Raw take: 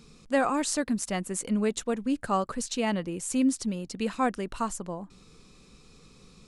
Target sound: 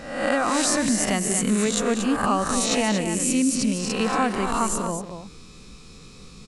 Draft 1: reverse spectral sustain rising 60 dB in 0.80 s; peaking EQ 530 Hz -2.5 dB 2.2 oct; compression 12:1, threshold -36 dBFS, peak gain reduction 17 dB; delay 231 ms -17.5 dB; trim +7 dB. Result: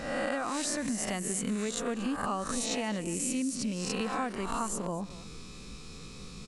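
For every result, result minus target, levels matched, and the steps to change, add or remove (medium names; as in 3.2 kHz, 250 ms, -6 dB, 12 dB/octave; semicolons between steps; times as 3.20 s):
compression: peak gain reduction +10.5 dB; echo-to-direct -9.5 dB
change: compression 12:1, threshold -24.5 dBFS, peak gain reduction 6.5 dB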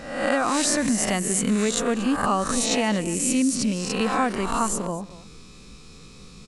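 echo-to-direct -9.5 dB
change: delay 231 ms -8 dB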